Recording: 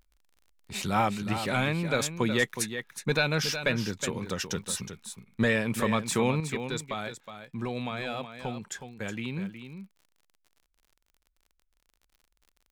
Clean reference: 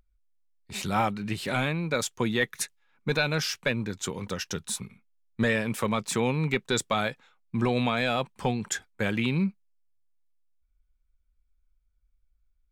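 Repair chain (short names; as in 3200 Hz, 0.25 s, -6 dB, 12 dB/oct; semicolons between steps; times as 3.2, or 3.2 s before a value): de-click; inverse comb 0.367 s -9.5 dB; gain 0 dB, from 6.4 s +8 dB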